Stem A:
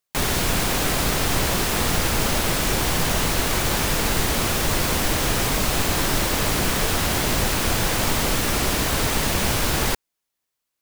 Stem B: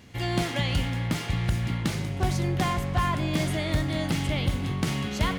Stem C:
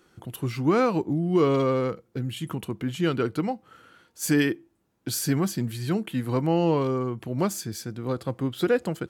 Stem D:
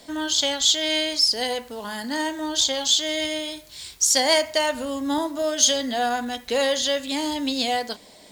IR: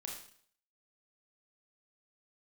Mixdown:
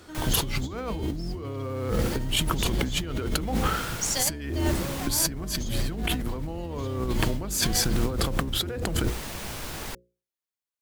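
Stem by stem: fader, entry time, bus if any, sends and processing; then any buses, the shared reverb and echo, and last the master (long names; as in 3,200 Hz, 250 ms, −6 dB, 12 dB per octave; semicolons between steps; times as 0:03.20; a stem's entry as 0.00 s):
−20.0 dB, 0.00 s, no send, no processing
−17.0 dB, 2.40 s, no send, no processing
+2.5 dB, 0.00 s, no send, sub-octave generator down 2 octaves, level +3 dB; level that may fall only so fast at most 57 dB per second
−15.5 dB, 0.00 s, no send, no processing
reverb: not used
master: mains-hum notches 60/120/180/240/300/360/420/480/540 Hz; compressor whose output falls as the input rises −28 dBFS, ratio −1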